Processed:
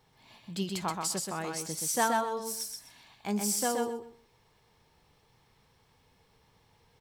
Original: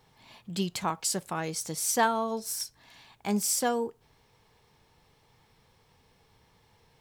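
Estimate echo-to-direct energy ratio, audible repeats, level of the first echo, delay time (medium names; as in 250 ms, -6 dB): -4.0 dB, 3, -4.0 dB, 127 ms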